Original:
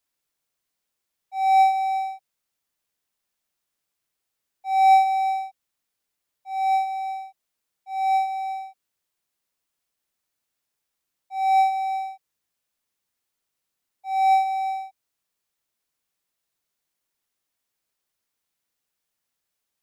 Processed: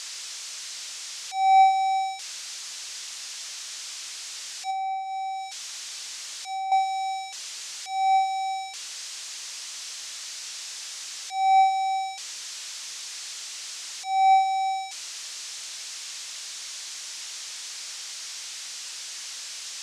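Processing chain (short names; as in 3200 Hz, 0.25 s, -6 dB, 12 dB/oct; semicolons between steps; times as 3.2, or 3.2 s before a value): switching spikes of -20.5 dBFS; LPF 6500 Hz 24 dB/oct; 4.7–6.72 compressor 6:1, threshold -29 dBFS, peak gain reduction 16 dB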